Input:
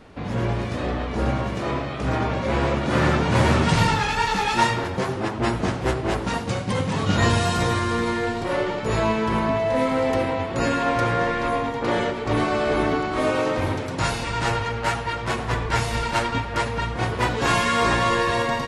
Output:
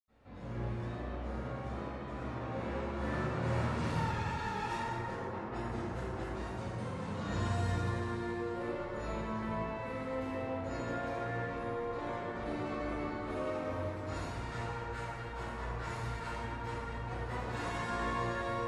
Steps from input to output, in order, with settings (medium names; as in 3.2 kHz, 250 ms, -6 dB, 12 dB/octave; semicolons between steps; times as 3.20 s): 5.05–5.46 s: low-pass 3.8 kHz; reverberation RT60 2.8 s, pre-delay 77 ms, DRR -60 dB; trim +2 dB